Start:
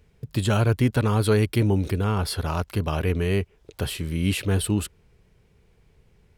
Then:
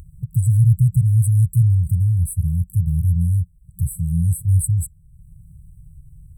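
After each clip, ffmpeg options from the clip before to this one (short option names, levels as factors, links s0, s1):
-af "afftfilt=real='re*(1-between(b*sr/4096,180,7700))':imag='im*(1-between(b*sr/4096,180,7700))':win_size=4096:overlap=0.75,lowshelf=f=210:g=4,acompressor=mode=upward:threshold=0.0126:ratio=2.5,volume=1.88"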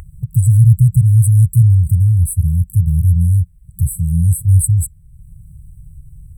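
-af "equalizer=f=250:t=o:w=1:g=-8,equalizer=f=1000:t=o:w=1:g=4,equalizer=f=2000:t=o:w=1:g=8,volume=2.11"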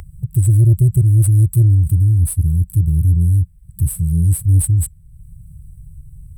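-filter_complex "[0:a]acrossover=split=190[s0][s1];[s1]acompressor=threshold=0.1:ratio=2[s2];[s0][s2]amix=inputs=2:normalize=0,acrossover=split=4300[s3][s4];[s4]acrusher=bits=4:mode=log:mix=0:aa=0.000001[s5];[s3][s5]amix=inputs=2:normalize=0,asoftclip=type=tanh:threshold=0.562"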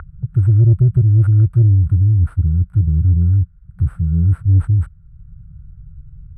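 -af "lowpass=f=1400:t=q:w=9"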